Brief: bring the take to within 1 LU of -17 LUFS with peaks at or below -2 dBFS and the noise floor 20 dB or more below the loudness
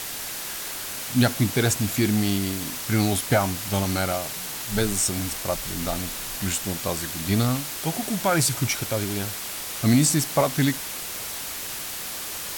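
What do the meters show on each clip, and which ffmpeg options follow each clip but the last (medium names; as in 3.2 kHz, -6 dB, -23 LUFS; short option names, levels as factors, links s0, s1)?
noise floor -33 dBFS; noise floor target -45 dBFS; loudness -24.5 LUFS; peak level -7.5 dBFS; loudness target -17.0 LUFS
-> -af "afftdn=nr=12:nf=-33"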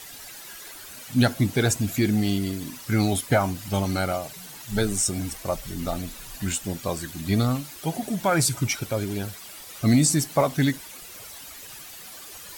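noise floor -42 dBFS; noise floor target -45 dBFS
-> -af "afftdn=nr=6:nf=-42"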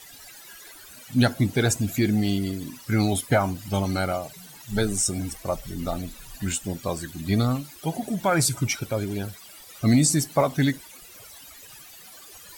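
noise floor -46 dBFS; loudness -25.0 LUFS; peak level -9.0 dBFS; loudness target -17.0 LUFS
-> -af "volume=2.51,alimiter=limit=0.794:level=0:latency=1"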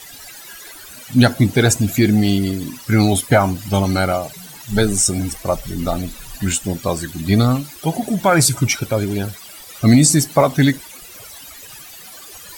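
loudness -17.0 LUFS; peak level -2.0 dBFS; noise floor -39 dBFS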